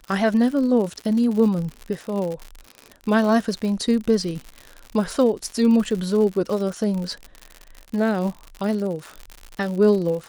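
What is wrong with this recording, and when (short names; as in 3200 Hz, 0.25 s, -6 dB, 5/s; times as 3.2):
crackle 97/s -28 dBFS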